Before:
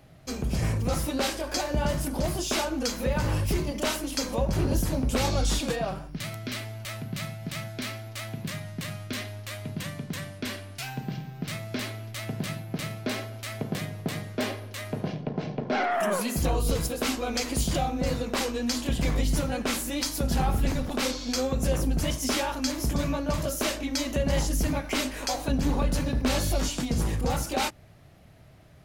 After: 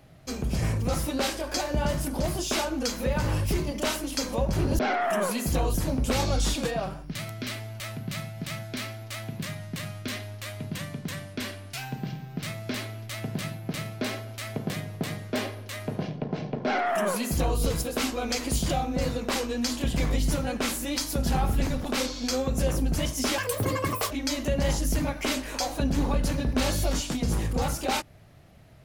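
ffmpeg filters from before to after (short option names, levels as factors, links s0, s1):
-filter_complex "[0:a]asplit=5[s0][s1][s2][s3][s4];[s0]atrim=end=4.792[s5];[s1]atrim=start=15.688:end=16.642[s6];[s2]atrim=start=4.788:end=22.434[s7];[s3]atrim=start=22.43:end=23.79,asetpts=PTS-STARTPTS,asetrate=82467,aresample=44100[s8];[s4]atrim=start=23.786[s9];[s5][s6]acrossfade=d=0.004:c1=hsin:c2=hsin[s10];[s10][s7]acrossfade=d=0.004:c1=hsin:c2=hsin[s11];[s11][s8]acrossfade=d=0.004:c1=hsin:c2=hsin[s12];[s12][s9]acrossfade=d=0.004:c1=hsin:c2=hsin"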